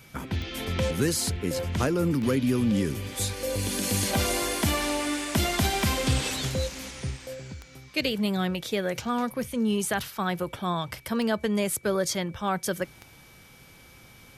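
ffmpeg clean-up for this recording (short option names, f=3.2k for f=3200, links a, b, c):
-af "adeclick=t=4,bandreject=f=2.3k:w=30"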